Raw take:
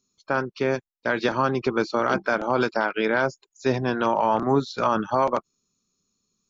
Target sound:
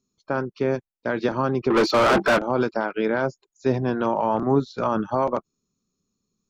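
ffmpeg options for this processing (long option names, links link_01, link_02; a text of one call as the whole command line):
ffmpeg -i in.wav -filter_complex "[0:a]tiltshelf=frequency=970:gain=5,asettb=1/sr,asplit=3[link_01][link_02][link_03];[link_01]atrim=end=1.704[link_04];[link_02]atrim=start=1.7:end=2.39,asetpts=PTS-STARTPTS,afade=type=in:duration=0.004:curve=qsin,afade=type=out:start_time=0.686:duration=0.004:curve=qsin,asplit=2[link_05][link_06];[link_06]highpass=frequency=720:poles=1,volume=29dB,asoftclip=type=tanh:threshold=-8dB[link_07];[link_05][link_07]amix=inputs=2:normalize=0,lowpass=frequency=3800:poles=1,volume=-6dB[link_08];[link_03]atrim=start=2.386[link_09];[link_04][link_08]acrossfade=duration=0.004:curve1=hsin:curve2=qsin[link_10];[link_10][link_09]acrossfade=duration=0.004:curve1=qsin:curve2=hsin,volume=-2.5dB" out.wav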